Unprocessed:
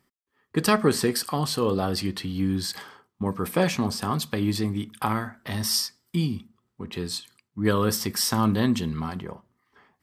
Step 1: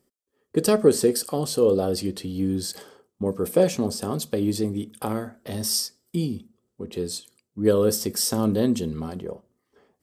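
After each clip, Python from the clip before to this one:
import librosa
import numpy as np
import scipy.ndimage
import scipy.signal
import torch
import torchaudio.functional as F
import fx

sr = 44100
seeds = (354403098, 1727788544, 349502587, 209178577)

y = fx.graphic_eq(x, sr, hz=(125, 500, 1000, 2000, 4000, 8000), db=(-4, 10, -9, -8, -3, 4))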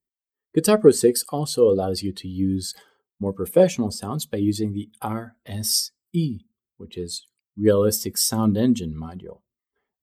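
y = fx.bin_expand(x, sr, power=1.5)
y = y * librosa.db_to_amplitude(5.0)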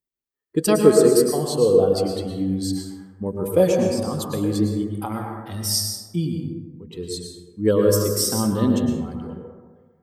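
y = fx.rev_plate(x, sr, seeds[0], rt60_s=1.4, hf_ratio=0.35, predelay_ms=95, drr_db=1.0)
y = y * librosa.db_to_amplitude(-1.5)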